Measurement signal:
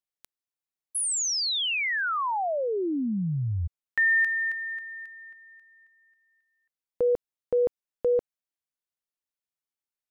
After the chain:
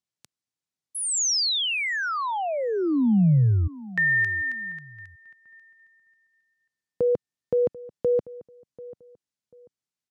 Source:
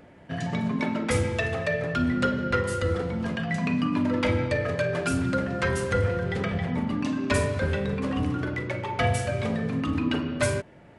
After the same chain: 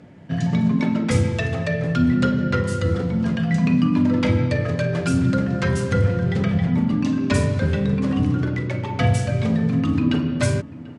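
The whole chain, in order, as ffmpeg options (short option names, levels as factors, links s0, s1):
-filter_complex "[0:a]highpass=140,lowpass=6900,bass=f=250:g=15,treble=f=4000:g=7,asplit=2[s0][s1];[s1]adelay=740,lowpass=f=1700:p=1,volume=0.119,asplit=2[s2][s3];[s3]adelay=740,lowpass=f=1700:p=1,volume=0.28[s4];[s2][s4]amix=inputs=2:normalize=0[s5];[s0][s5]amix=inputs=2:normalize=0"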